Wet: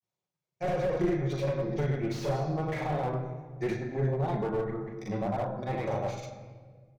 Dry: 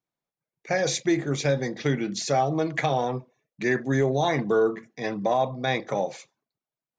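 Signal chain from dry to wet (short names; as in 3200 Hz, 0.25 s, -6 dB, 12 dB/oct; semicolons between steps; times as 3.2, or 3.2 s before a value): median filter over 5 samples; HPF 60 Hz 24 dB/oct; treble ducked by the level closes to 1600 Hz, closed at -21 dBFS; fifteen-band EQ 100 Hz +8 dB, 250 Hz -6 dB, 1600 Hz -5 dB, 6300 Hz +6 dB; compressor 3:1, threshold -27 dBFS, peak gain reduction 7 dB; grains 0.1 s, grains 20/s, pitch spread up and down by 0 st; added harmonics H 2 -9 dB, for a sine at -17 dBFS; doubler 38 ms -8 dB; shoebox room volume 1700 m³, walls mixed, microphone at 1 m; slew limiter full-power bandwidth 28 Hz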